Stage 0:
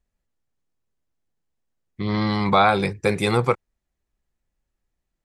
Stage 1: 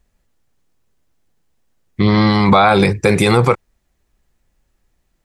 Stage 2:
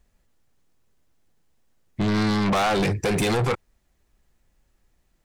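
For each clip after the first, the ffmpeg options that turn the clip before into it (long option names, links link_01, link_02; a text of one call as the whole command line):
ffmpeg -i in.wav -af "alimiter=level_in=15dB:limit=-1dB:release=50:level=0:latency=1,volume=-1dB" out.wav
ffmpeg -i in.wav -af "asoftclip=type=tanh:threshold=-18dB,volume=-1.5dB" out.wav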